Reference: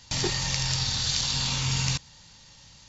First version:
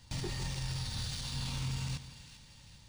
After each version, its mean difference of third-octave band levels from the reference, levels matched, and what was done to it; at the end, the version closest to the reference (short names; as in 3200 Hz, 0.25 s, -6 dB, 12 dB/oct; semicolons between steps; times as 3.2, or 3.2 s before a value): 6.5 dB: low shelf 300 Hz +9 dB; limiter -19 dBFS, peak gain reduction 10.5 dB; on a send: split-band echo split 1500 Hz, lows 0.155 s, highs 0.396 s, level -12.5 dB; on the sum: decimation joined by straight lines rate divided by 3×; gain -8.5 dB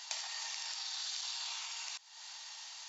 13.5 dB: in parallel at -3 dB: limiter -19.5 dBFS, peak gain reduction 10.5 dB; on the sum: compressor 10:1, threshold -37 dBFS, peak gain reduction 18 dB; brick-wall FIR high-pass 610 Hz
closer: first